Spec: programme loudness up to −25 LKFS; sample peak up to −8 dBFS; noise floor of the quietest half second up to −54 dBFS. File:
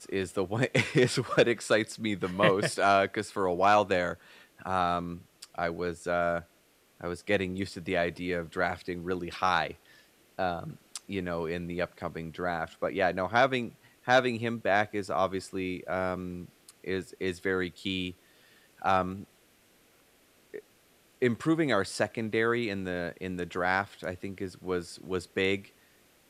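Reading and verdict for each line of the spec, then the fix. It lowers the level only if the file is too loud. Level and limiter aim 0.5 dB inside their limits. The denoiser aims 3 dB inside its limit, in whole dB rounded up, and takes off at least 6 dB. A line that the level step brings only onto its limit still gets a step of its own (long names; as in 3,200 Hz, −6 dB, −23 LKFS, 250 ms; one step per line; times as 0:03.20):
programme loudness −30.0 LKFS: in spec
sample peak −10.5 dBFS: in spec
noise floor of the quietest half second −65 dBFS: in spec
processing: no processing needed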